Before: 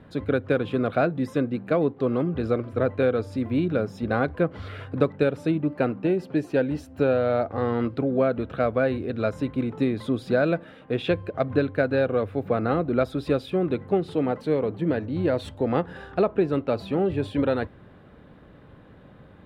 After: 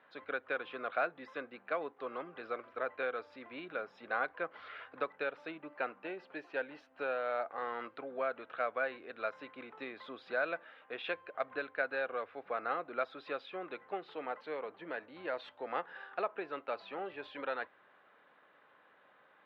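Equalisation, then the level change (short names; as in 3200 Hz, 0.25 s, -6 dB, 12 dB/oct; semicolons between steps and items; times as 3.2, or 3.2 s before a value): HPF 1100 Hz 12 dB/oct; air absorption 270 m; high shelf 4700 Hz -6 dB; -1.0 dB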